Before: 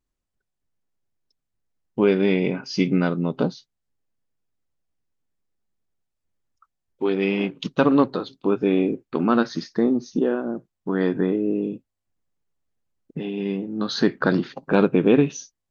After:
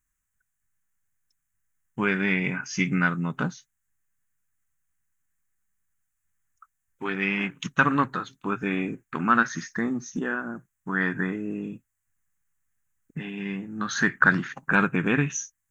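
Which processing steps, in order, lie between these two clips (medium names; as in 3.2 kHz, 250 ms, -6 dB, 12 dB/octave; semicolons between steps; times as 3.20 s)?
FFT filter 140 Hz 0 dB, 380 Hz -12 dB, 540 Hz -13 dB, 1.7 kHz +11 dB, 4.7 kHz -11 dB, 6.6 kHz +11 dB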